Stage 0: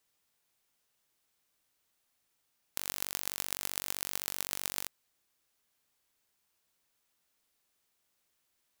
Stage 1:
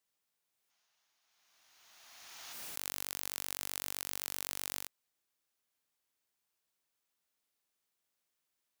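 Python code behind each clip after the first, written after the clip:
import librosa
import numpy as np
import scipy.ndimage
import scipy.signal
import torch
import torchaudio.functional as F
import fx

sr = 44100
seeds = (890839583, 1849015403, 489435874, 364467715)

y = fx.low_shelf(x, sr, hz=110.0, db=-6.5)
y = fx.spec_box(y, sr, start_s=0.7, length_s=1.83, low_hz=620.0, high_hz=7000.0, gain_db=10)
y = fx.pre_swell(y, sr, db_per_s=24.0)
y = F.gain(torch.from_numpy(y), -7.0).numpy()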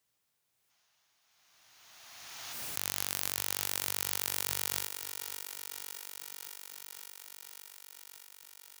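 y = fx.peak_eq(x, sr, hz=110.0, db=9.5, octaves=0.85)
y = fx.echo_thinned(y, sr, ms=563, feedback_pct=78, hz=210.0, wet_db=-9)
y = F.gain(torch.from_numpy(y), 5.0).numpy()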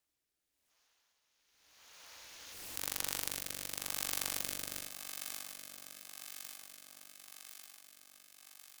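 y = fx.rotary(x, sr, hz=0.9)
y = fx.room_early_taps(y, sr, ms=(18, 69), db=(-9.0, -10.0))
y = y * np.sin(2.0 * np.pi * 180.0 * np.arange(len(y)) / sr)
y = F.gain(torch.from_numpy(y), 1.0).numpy()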